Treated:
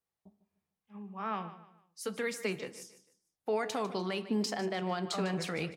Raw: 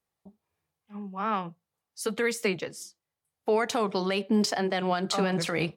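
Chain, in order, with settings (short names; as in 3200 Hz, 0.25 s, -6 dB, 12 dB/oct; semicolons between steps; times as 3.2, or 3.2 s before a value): feedback echo 0.15 s, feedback 34%, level -14.5 dB; on a send at -13 dB: reverb RT60 0.60 s, pre-delay 5 ms; on the sum: gain -7.5 dB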